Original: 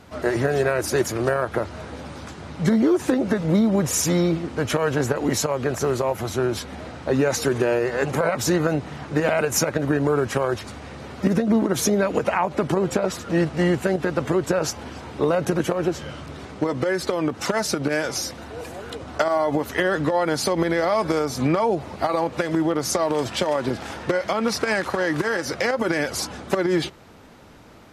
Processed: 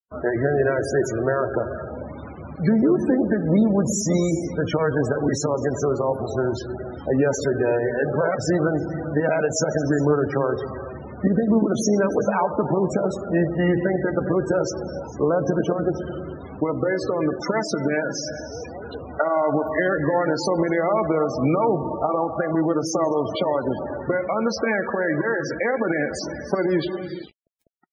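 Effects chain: non-linear reverb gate 0.48 s flat, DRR 6 dB; requantised 6-bit, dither none; loudest bins only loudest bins 32

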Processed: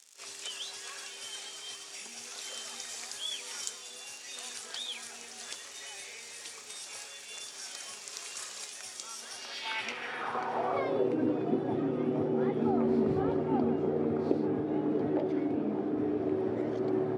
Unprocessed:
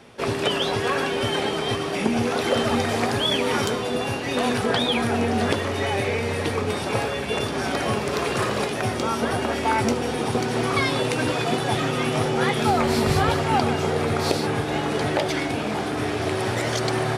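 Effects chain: crackle 190/s -30 dBFS; band-pass sweep 7100 Hz -> 310 Hz, 9.26–11.17; pre-echo 38 ms -13 dB

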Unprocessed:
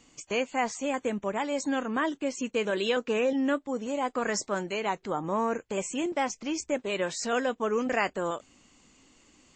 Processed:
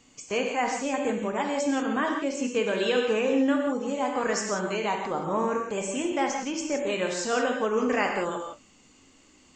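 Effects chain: non-linear reverb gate 0.2 s flat, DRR 1.5 dB

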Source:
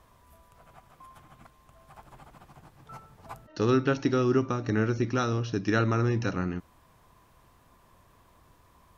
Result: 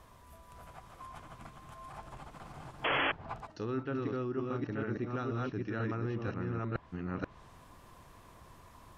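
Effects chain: reverse delay 0.483 s, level -2 dB; reverse; compressor 5:1, threshold -36 dBFS, peak gain reduction 16.5 dB; reverse; painted sound noise, 2.84–3.12, 270–3400 Hz -31 dBFS; treble ducked by the level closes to 2700 Hz, closed at -35 dBFS; gain +2 dB

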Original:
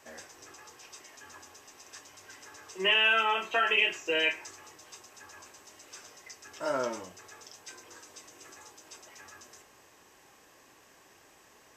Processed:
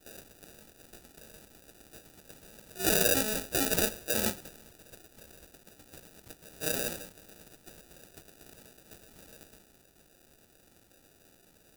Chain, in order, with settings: sample-and-hold 41×; pre-emphasis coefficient 0.8; gain +8.5 dB

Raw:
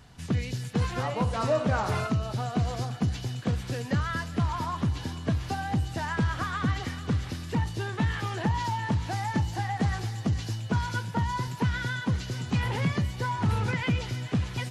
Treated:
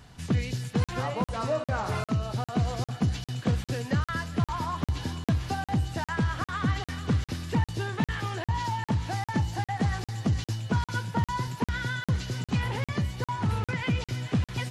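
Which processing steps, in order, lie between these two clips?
vocal rider 0.5 s; crackling interface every 0.40 s, samples 2048, zero, from 0.84

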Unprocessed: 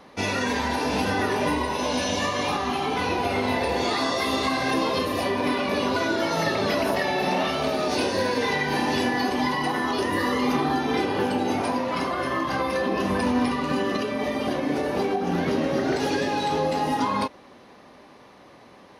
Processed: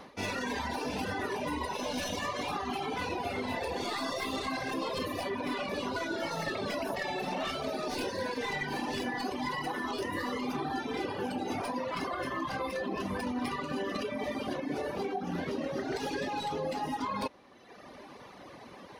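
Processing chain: tracing distortion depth 0.033 ms; reverb removal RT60 1.1 s; reverse; compressor 6:1, threshold -35 dBFS, peak gain reduction 13 dB; reverse; gain +3 dB

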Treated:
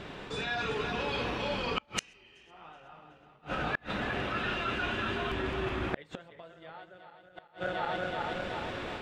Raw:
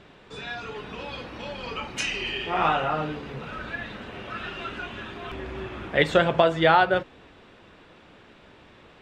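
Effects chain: regenerating reverse delay 0.187 s, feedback 67%, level -6 dB; AGC gain up to 4 dB; flipped gate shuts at -17 dBFS, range -40 dB; reverse; compressor 6:1, threshold -38 dBFS, peak gain reduction 12.5 dB; reverse; gain +7.5 dB

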